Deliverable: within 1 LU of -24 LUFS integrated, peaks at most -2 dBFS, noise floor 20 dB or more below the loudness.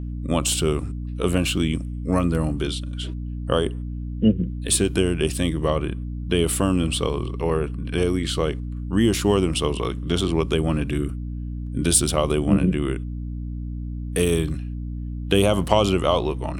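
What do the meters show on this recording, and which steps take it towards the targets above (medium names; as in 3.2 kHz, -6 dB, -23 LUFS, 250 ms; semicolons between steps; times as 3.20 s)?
hum 60 Hz; highest harmonic 300 Hz; hum level -27 dBFS; loudness -23.0 LUFS; peak level -1.5 dBFS; loudness target -24.0 LUFS
-> hum notches 60/120/180/240/300 Hz; trim -1 dB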